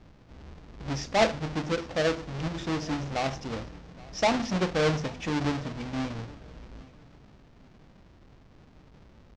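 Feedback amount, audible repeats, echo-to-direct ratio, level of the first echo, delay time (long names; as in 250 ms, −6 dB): 29%, 2, −22.0 dB, −22.5 dB, 825 ms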